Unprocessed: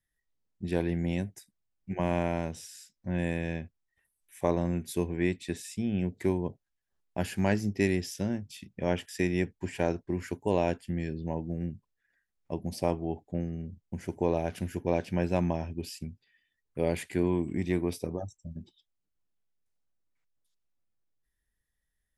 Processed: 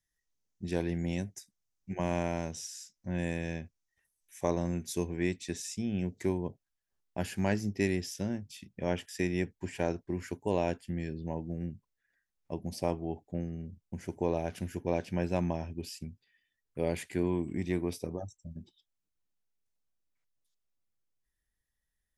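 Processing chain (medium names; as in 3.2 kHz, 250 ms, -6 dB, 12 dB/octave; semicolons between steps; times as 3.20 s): peaking EQ 6.1 kHz +11 dB 0.64 oct, from 6.25 s +3 dB; trim -3 dB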